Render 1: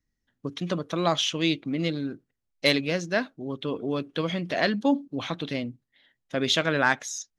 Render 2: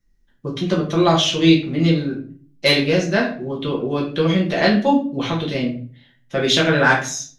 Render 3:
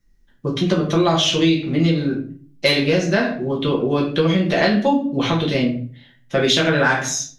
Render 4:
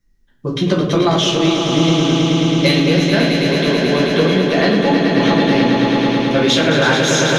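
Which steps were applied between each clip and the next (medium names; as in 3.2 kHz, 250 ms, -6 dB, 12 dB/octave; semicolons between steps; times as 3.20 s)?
bass shelf 170 Hz +4 dB; simulated room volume 35 m³, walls mixed, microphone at 0.88 m; trim +2.5 dB
compression 6:1, threshold -17 dBFS, peak gain reduction 9.5 dB; trim +4 dB
echo with a slow build-up 108 ms, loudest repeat 5, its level -7 dB; level rider; trim -1 dB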